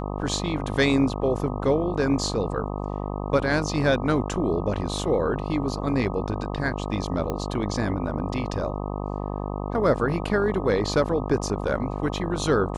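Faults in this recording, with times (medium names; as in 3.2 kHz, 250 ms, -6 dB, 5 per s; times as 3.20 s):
buzz 50 Hz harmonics 25 -30 dBFS
7.30 s: pop -15 dBFS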